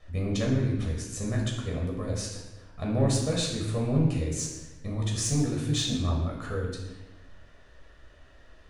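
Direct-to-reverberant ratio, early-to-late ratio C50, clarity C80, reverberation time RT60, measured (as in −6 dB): −2.0 dB, 3.0 dB, 5.5 dB, 1.1 s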